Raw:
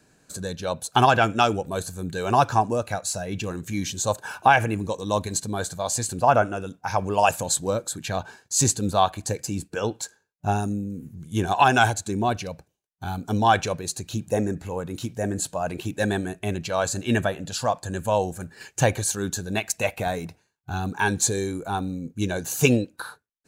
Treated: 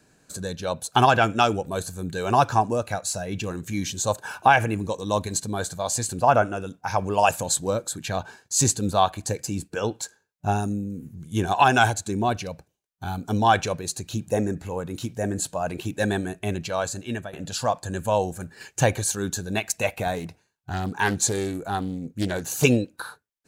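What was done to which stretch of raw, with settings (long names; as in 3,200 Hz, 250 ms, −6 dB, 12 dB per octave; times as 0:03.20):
0:16.60–0:17.33: fade out, to −15 dB
0:20.14–0:22.64: highs frequency-modulated by the lows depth 0.6 ms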